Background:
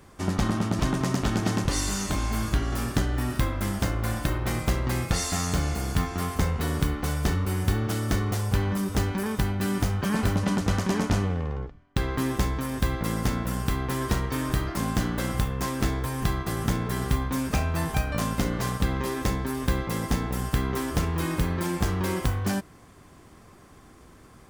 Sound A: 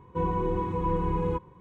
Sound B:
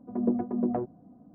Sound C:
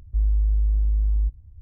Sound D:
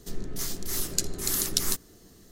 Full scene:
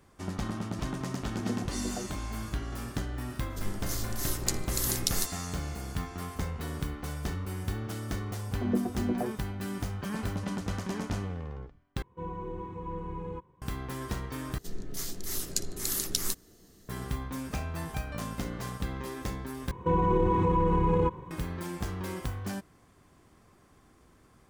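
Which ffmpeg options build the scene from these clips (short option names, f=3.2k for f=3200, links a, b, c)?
-filter_complex "[2:a]asplit=2[a][b];[4:a]asplit=2[c][d];[1:a]asplit=2[e][f];[0:a]volume=-9dB[g];[f]alimiter=level_in=24.5dB:limit=-1dB:release=50:level=0:latency=1[h];[g]asplit=4[i][j][k][l];[i]atrim=end=12.024[m];[e]atrim=end=1.6,asetpts=PTS-STARTPTS,volume=-10.5dB[n];[j]atrim=start=13.616:end=14.584[o];[d]atrim=end=2.31,asetpts=PTS-STARTPTS,volume=-4dB[p];[k]atrim=start=16.886:end=19.714[q];[h]atrim=end=1.6,asetpts=PTS-STARTPTS,volume=-16dB[r];[l]atrim=start=21.306[s];[a]atrim=end=1.34,asetpts=PTS-STARTPTS,volume=-8.5dB,afade=t=in:d=0.004:c=hsin,afade=t=out:st=1.336:d=0.004:c=hsin,adelay=1220[t];[c]atrim=end=2.31,asetpts=PTS-STARTPTS,volume=-3.5dB,afade=t=in:d=0.004:c=hsin,afade=t=out:st=2.306:d=0.004:c=hsin,adelay=3500[u];[b]atrim=end=1.34,asetpts=PTS-STARTPTS,volume=-3dB,afade=t=in:d=0.004:c=hsin,afade=t=out:st=1.336:d=0.004:c=hsin,adelay=8460[v];[m][n]acrossfade=d=0.004:c1=hsin:c2=hsin[w];[w][o]acrossfade=d=0.004:c1=hsin:c2=hsin[x];[x][p]acrossfade=d=0.004:c1=hsin:c2=hsin[y];[y][q]acrossfade=d=0.004:c1=hsin:c2=hsin[z];[z][r]acrossfade=d=0.004:c1=hsin:c2=hsin[aa];[aa][s]acrossfade=d=0.004:c1=hsin:c2=hsin[ab];[ab][t][u][v]amix=inputs=4:normalize=0"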